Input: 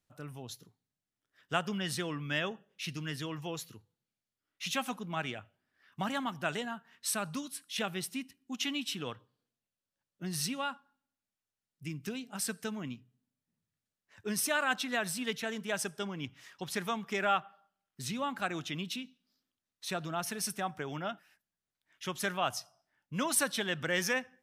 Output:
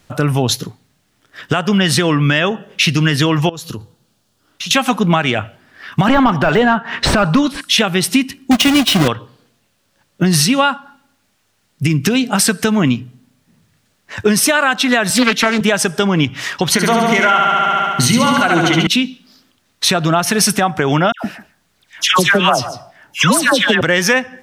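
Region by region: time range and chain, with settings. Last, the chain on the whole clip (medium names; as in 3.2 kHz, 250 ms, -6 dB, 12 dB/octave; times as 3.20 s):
3.49–4.71 s: peaking EQ 2.1 kHz -11 dB 0.64 oct + compression 16:1, threshold -52 dBFS
6.08–7.61 s: overdrive pedal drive 21 dB, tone 3.6 kHz, clips at -16 dBFS + de-esser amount 90% + tilt EQ -2.5 dB/octave
8.51–9.08 s: square wave that keeps the level + comb of notches 440 Hz
15.10–15.61 s: high-pass 160 Hz 24 dB/octave + comb 3.3 ms, depth 59% + loudspeaker Doppler distortion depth 0.46 ms
16.72–18.87 s: rippled EQ curve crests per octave 1.9, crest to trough 10 dB + flutter echo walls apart 11.9 m, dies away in 1.3 s
21.12–23.81 s: phase dispersion lows, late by 122 ms, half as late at 1.3 kHz + delay 147 ms -21 dB
whole clip: treble shelf 8 kHz -8.5 dB; compression 10:1, threshold -41 dBFS; loudness maximiser +33 dB; trim -1 dB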